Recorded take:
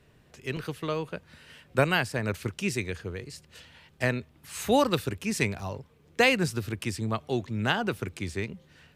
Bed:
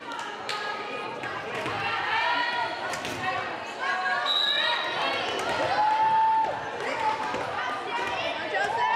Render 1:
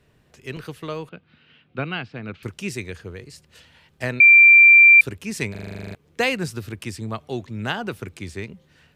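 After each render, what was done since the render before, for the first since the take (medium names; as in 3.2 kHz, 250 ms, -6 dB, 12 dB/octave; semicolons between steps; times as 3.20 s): 1.09–2.43 s: cabinet simulation 130–3400 Hz, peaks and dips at 410 Hz -4 dB, 580 Hz -10 dB, 960 Hz -9 dB, 1.8 kHz -9 dB; 4.20–5.01 s: bleep 2.36 kHz -6.5 dBFS; 5.51 s: stutter in place 0.04 s, 11 plays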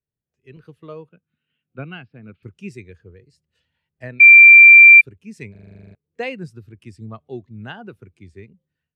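level rider gain up to 7 dB; spectral contrast expander 1.5:1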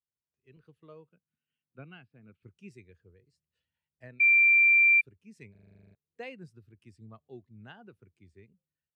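trim -15 dB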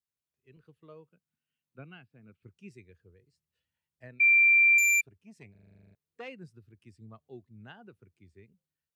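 4.78–6.28 s: transformer saturation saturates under 3.8 kHz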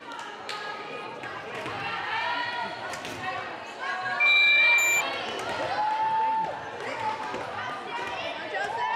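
add bed -3.5 dB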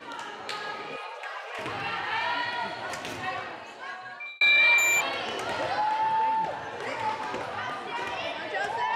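0.96–1.59 s: steep high-pass 500 Hz; 3.27–4.41 s: fade out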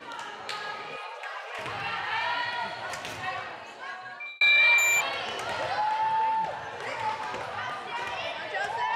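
dynamic bell 300 Hz, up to -8 dB, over -51 dBFS, Q 1.4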